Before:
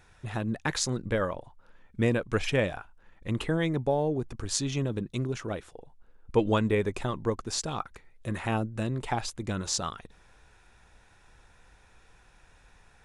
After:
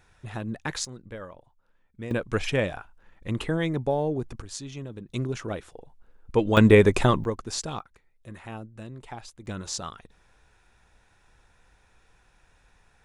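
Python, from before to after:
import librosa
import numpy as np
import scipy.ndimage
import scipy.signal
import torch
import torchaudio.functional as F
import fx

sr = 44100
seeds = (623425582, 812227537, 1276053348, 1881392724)

y = fx.gain(x, sr, db=fx.steps((0.0, -2.0), (0.85, -11.5), (2.11, 1.0), (4.42, -8.0), (5.09, 1.5), (6.57, 11.0), (7.24, 0.0), (7.79, -10.0), (9.46, -3.0)))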